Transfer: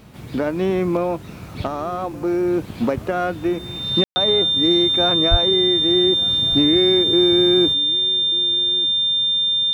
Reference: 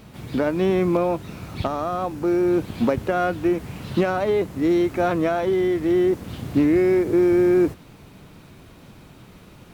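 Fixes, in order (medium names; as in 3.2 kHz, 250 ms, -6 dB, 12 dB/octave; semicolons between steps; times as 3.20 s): band-stop 3.6 kHz, Q 30; de-plosive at 5.30 s; room tone fill 4.04–4.16 s; inverse comb 1189 ms -20.5 dB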